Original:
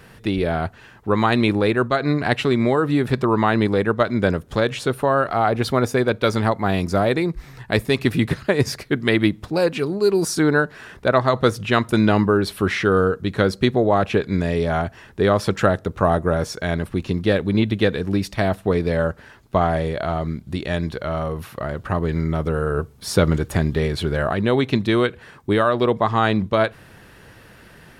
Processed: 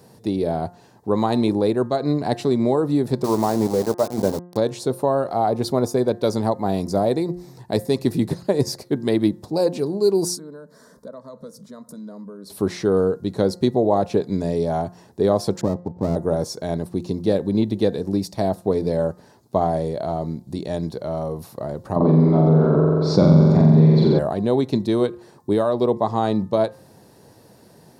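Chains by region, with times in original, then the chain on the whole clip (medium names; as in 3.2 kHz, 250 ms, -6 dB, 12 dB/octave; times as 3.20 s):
3.24–4.57 s: low-pass 2 kHz + hum notches 60/120/180/240/300/360 Hz + small samples zeroed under -22.5 dBFS
10.36–12.50 s: compression 4:1, threshold -33 dBFS + static phaser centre 530 Hz, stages 8
15.61–16.16 s: rippled Chebyshev low-pass 880 Hz, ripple 3 dB + sliding maximum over 33 samples
21.96–24.19 s: cabinet simulation 130–3600 Hz, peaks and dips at 140 Hz +9 dB, 210 Hz +5 dB, 450 Hz -5 dB, 1.1 kHz +3 dB, 1.8 kHz -6 dB, 3 kHz -10 dB + flutter echo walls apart 7.6 m, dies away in 1.5 s + level flattener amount 50%
whole clip: high-pass 130 Hz 12 dB/octave; high-order bell 2 kHz -15 dB; de-hum 176.9 Hz, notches 11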